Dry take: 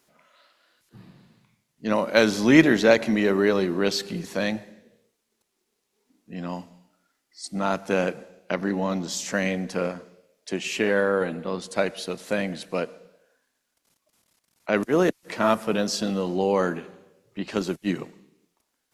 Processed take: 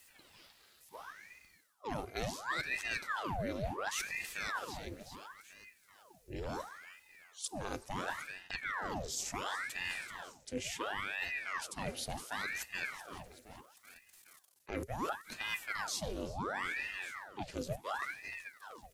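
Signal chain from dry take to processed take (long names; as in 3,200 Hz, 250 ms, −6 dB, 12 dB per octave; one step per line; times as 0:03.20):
first-order pre-emphasis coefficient 0.8
hollow resonant body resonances 240/380/2,200 Hz, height 15 dB, ringing for 100 ms
on a send: repeating echo 381 ms, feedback 54%, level −20 dB
on the sum: reversed playback
downward compressor 5 to 1, threshold −45 dBFS, peak gain reduction 24.5 dB
reversed playback
ring modulator whose carrier an LFO sweeps 1,200 Hz, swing 90%, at 0.71 Hz
level +10 dB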